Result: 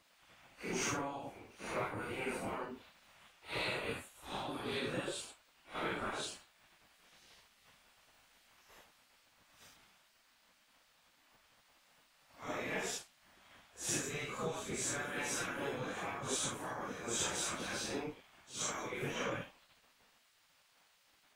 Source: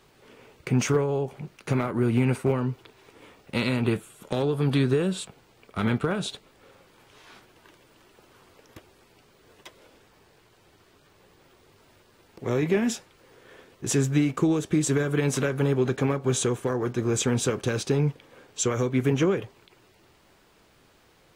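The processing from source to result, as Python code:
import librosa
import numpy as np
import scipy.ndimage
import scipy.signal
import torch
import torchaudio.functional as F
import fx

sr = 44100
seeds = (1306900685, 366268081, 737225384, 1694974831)

y = fx.phase_scramble(x, sr, seeds[0], window_ms=200)
y = fx.cheby_harmonics(y, sr, harmonics=(2, 4, 5), levels_db=(-26, -29, -43), full_scale_db=-9.5)
y = fx.spec_gate(y, sr, threshold_db=-10, keep='weak')
y = y * 10.0 ** (-6.0 / 20.0)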